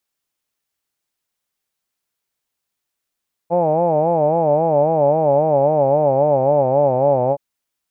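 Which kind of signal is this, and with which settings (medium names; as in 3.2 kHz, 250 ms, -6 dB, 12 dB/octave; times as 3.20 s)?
formant-synthesis vowel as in hawed, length 3.87 s, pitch 166 Hz, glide -4 st, vibrato 3.7 Hz, vibrato depth 1.25 st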